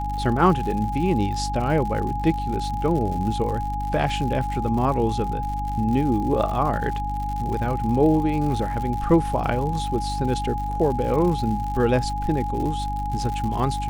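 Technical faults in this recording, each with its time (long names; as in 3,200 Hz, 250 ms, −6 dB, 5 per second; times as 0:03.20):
surface crackle 120 per second −30 dBFS
mains hum 50 Hz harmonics 6 −29 dBFS
whistle 830 Hz −27 dBFS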